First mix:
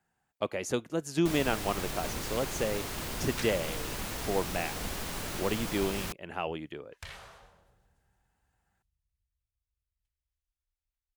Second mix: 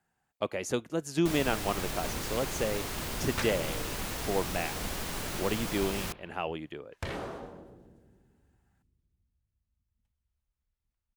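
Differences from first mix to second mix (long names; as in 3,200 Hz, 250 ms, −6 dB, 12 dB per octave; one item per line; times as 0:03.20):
second sound: remove guitar amp tone stack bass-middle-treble 10-0-10
reverb: on, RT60 1.6 s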